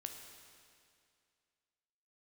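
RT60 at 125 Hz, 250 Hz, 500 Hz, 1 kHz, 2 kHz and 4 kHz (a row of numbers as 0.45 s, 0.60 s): 2.3 s, 2.3 s, 2.3 s, 2.3 s, 2.3 s, 2.2 s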